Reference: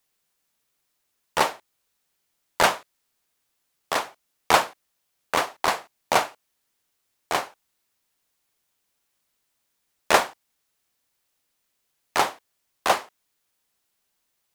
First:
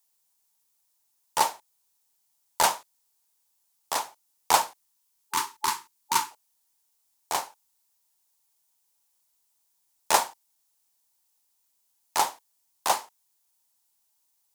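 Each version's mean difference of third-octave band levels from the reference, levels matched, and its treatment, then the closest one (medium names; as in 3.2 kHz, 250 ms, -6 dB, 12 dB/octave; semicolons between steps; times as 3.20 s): 5.5 dB: peaking EQ 900 Hz +11.5 dB 0.42 oct; spectral selection erased 4.79–6.31 s, 410–850 Hz; tone controls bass 0 dB, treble +14 dB; trim -9.5 dB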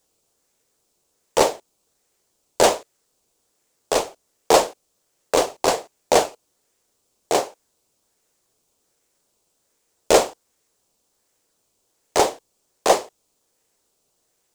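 4.0 dB: FFT filter 190 Hz 0 dB, 460 Hz +12 dB, 1.4 kHz -7 dB, 7.6 kHz +10 dB, 12 kHz +1 dB; in parallel at -8.5 dB: decimation with a swept rate 16×, swing 100% 1.3 Hz; on the sum: saturation -4.5 dBFS, distortion -15 dB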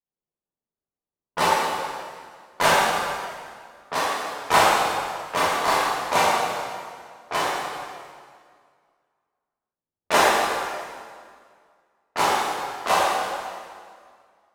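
10.5 dB: spectral noise reduction 11 dB; level-controlled noise filter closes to 640 Hz, open at -23.5 dBFS; plate-style reverb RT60 2 s, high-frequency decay 0.85×, DRR -9.5 dB; trim -6 dB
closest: second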